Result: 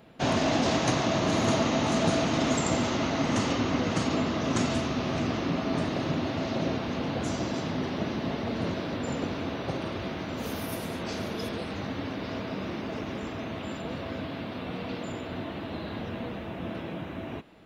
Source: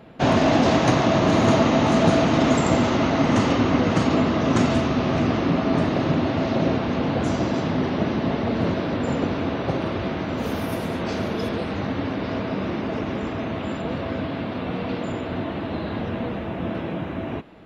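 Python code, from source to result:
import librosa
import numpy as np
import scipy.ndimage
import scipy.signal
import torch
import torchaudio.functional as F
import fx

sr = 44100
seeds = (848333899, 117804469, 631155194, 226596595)

y = fx.high_shelf(x, sr, hz=3900.0, db=11.0)
y = y * 10.0 ** (-8.0 / 20.0)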